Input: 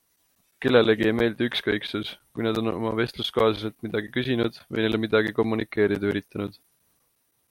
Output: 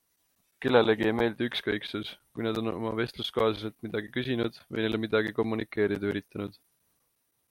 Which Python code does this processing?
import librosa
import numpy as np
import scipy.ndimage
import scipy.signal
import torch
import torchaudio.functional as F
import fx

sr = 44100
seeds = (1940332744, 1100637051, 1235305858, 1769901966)

y = fx.peak_eq(x, sr, hz=850.0, db=11.0, octaves=0.54, at=(0.7, 1.35))
y = y * librosa.db_to_amplitude(-5.0)